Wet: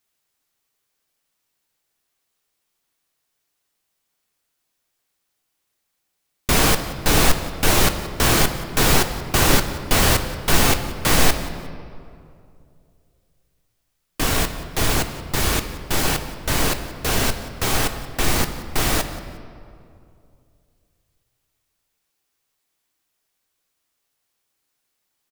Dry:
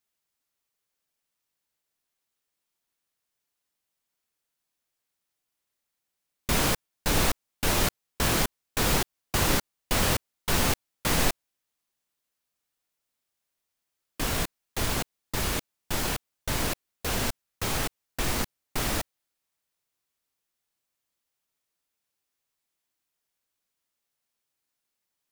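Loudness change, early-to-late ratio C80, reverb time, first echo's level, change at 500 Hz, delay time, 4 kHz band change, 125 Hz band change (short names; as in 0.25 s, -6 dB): +8.0 dB, 10.5 dB, 2.5 s, -18.0 dB, +8.5 dB, 0.179 s, +8.0 dB, +8.5 dB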